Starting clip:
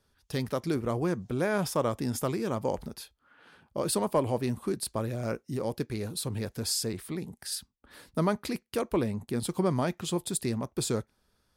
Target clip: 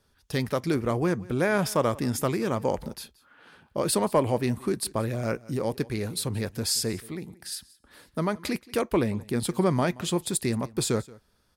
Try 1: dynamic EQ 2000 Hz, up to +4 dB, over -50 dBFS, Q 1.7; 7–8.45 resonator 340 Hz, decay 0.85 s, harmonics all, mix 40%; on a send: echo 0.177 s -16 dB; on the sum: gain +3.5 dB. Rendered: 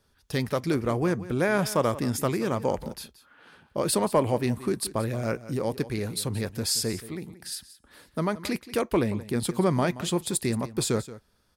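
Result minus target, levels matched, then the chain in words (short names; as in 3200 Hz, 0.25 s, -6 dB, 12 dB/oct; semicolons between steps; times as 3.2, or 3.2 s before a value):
echo-to-direct +6 dB
dynamic EQ 2000 Hz, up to +4 dB, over -50 dBFS, Q 1.7; 7–8.45 resonator 340 Hz, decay 0.85 s, harmonics all, mix 40%; on a send: echo 0.177 s -22 dB; on the sum: gain +3.5 dB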